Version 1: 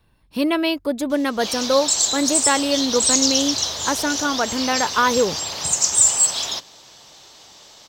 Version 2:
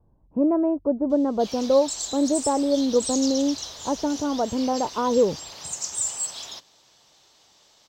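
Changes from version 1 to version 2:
speech: add inverse Chebyshev low-pass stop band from 4.9 kHz, stop band 80 dB; background -12.0 dB

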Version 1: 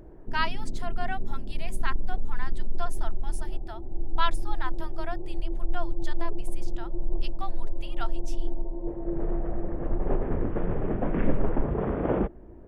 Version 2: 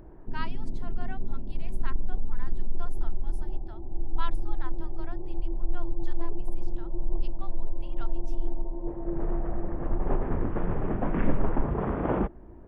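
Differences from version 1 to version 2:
speech -11.5 dB; master: add graphic EQ 500/1000/8000 Hz -4/+4/-6 dB

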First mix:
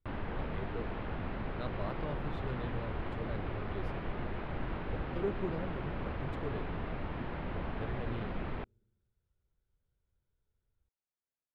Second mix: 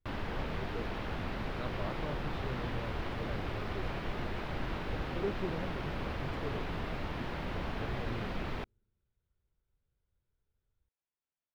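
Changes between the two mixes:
speech: send -6.5 dB; background: remove distance through air 370 m

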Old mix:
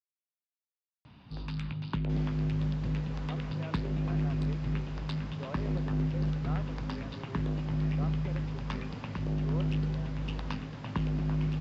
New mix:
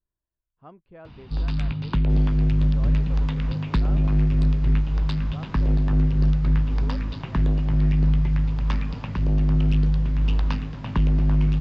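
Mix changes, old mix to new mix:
speech: entry -2.65 s; first sound +6.5 dB; master: remove high-pass 92 Hz 12 dB/octave

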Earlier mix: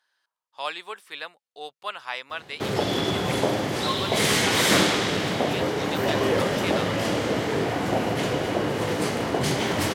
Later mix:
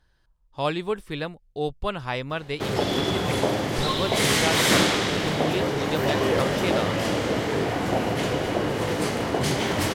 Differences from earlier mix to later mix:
speech: remove high-pass 950 Hz 12 dB/octave; master: remove high-pass 80 Hz

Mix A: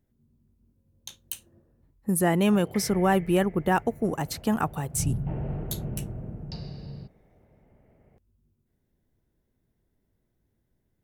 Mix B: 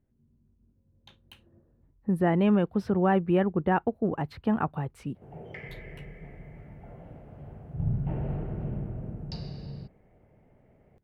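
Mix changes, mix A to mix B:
speech: add distance through air 450 m; background: entry +2.80 s

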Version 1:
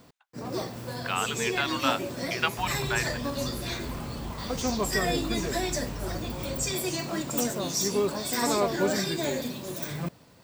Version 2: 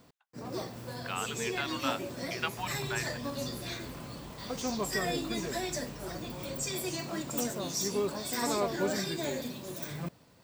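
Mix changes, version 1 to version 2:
speech -7.0 dB; first sound -5.0 dB; second sound: add pre-emphasis filter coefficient 0.8

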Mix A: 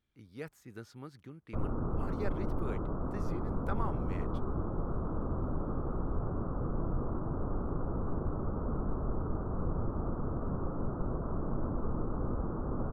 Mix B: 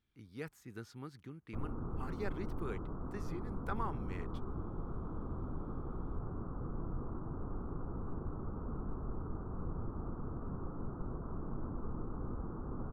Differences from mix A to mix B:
background -6.5 dB; master: add peaking EQ 590 Hz -6.5 dB 0.47 oct

